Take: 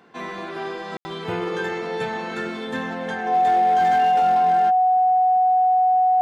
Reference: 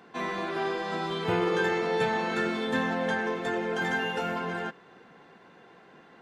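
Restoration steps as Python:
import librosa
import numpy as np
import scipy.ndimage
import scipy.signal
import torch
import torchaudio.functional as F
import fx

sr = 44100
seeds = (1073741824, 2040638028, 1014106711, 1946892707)

y = fx.fix_declip(x, sr, threshold_db=-13.5)
y = fx.notch(y, sr, hz=740.0, q=30.0)
y = fx.fix_ambience(y, sr, seeds[0], print_start_s=0.0, print_end_s=0.5, start_s=0.97, end_s=1.05)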